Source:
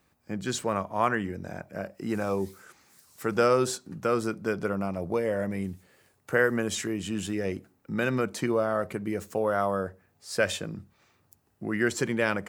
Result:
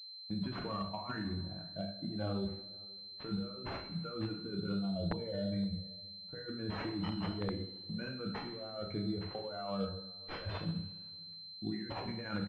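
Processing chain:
spectral dynamics exaggerated over time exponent 2
noise gate −56 dBFS, range −16 dB
compressor whose output falls as the input rises −41 dBFS, ratio −1
coupled-rooms reverb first 0.57 s, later 2.1 s, DRR 0 dB
wrap-around overflow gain 24 dB
slap from a distant wall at 89 metres, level −27 dB
switching amplifier with a slow clock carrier 4,100 Hz
level −1.5 dB

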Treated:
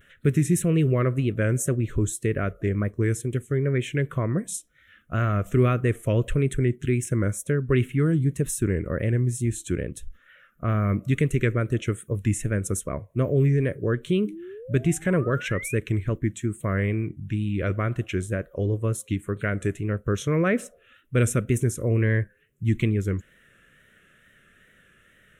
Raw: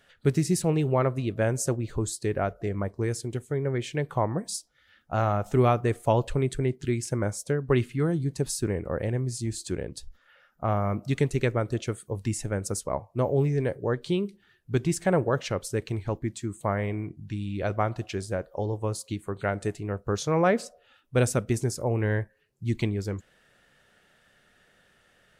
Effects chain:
in parallel at +1 dB: brickwall limiter −20 dBFS, peak gain reduction 10 dB
on the sum: sound drawn into the spectrogram rise, 0:14.26–0:15.76, 280–2,500 Hz −36 dBFS
tape wow and flutter 73 cents
phaser with its sweep stopped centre 2,000 Hz, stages 4

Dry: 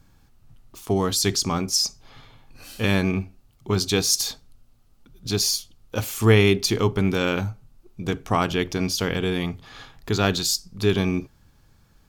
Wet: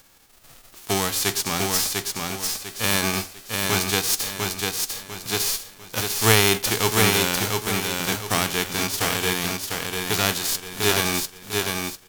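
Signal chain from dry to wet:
spectral envelope flattened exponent 0.3
repeating echo 698 ms, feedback 35%, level −3.5 dB
level −1.5 dB

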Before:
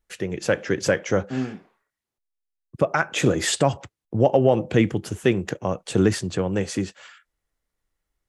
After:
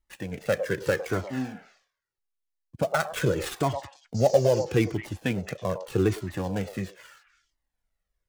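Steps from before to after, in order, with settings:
gap after every zero crossing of 0.098 ms
0:04.14–0:04.63: noise in a band 4,400–7,000 Hz −40 dBFS
on a send: echo through a band-pass that steps 107 ms, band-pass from 700 Hz, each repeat 1.4 octaves, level −6 dB
on the sum: flanger whose copies keep moving one way falling 0.8 Hz

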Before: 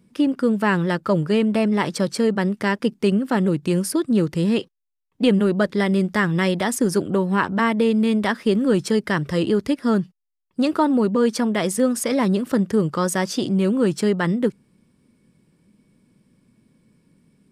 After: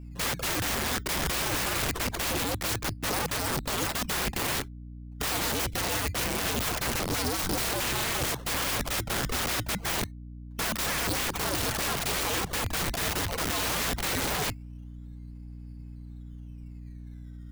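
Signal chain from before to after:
low-shelf EQ 180 Hz +8.5 dB
sample-and-hold swept by an LFO 17×, swing 100% 0.24 Hz
soft clipping −13 dBFS, distortion −16 dB
flanger swept by the level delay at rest 9.1 ms, full sweep at −15 dBFS
0:05.24–0:05.97: flat-topped bell 1,100 Hz −15.5 dB
frequency shifter −95 Hz
convolution reverb, pre-delay 6 ms, DRR 13 dB
wrap-around overflow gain 24.5 dB
mains hum 60 Hz, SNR 11 dB

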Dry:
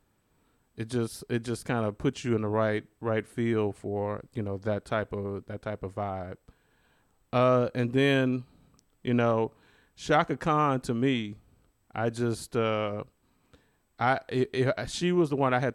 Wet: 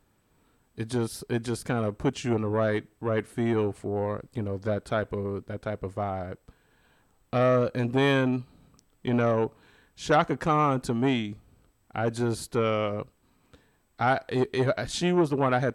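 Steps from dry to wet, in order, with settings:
saturating transformer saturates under 630 Hz
level +3 dB

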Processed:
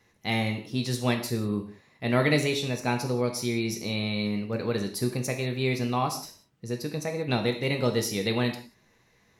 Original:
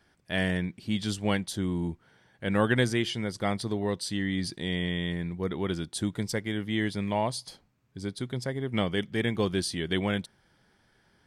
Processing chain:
reverb whose tail is shaped and stops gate 250 ms falling, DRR 3.5 dB
speed change +20%

